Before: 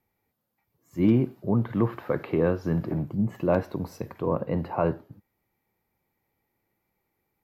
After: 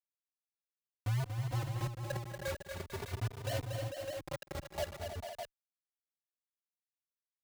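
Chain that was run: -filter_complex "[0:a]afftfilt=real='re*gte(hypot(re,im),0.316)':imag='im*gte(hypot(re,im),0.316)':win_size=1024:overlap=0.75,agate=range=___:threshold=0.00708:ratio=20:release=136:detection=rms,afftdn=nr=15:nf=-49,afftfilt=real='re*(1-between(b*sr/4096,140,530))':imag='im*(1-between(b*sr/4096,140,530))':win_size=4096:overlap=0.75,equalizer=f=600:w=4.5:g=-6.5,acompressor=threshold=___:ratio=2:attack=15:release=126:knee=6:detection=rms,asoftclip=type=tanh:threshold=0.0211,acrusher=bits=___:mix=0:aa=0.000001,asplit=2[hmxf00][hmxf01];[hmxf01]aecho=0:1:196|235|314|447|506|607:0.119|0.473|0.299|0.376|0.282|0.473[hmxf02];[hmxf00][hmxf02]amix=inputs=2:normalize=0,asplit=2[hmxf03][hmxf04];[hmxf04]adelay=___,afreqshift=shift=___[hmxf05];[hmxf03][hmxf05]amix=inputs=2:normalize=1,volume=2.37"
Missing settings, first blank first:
0.355, 0.00501, 6, 3.2, 0.44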